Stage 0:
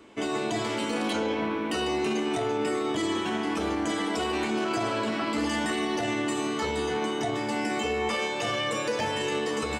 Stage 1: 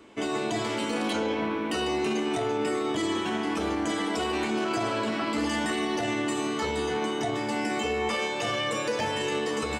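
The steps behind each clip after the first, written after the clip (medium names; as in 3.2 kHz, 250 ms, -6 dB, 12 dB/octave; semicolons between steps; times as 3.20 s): no audible change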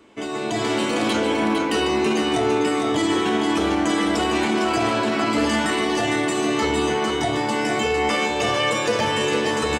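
on a send: delay 456 ms -6 dB; on the sum: level rider gain up to 6.5 dB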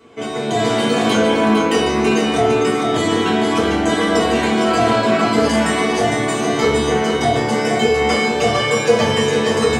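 reverberation, pre-delay 3 ms, DRR -5 dB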